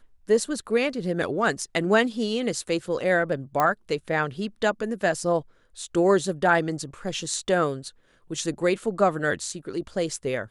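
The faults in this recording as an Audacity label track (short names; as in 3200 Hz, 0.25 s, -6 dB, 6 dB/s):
3.600000	3.600000	pop -10 dBFS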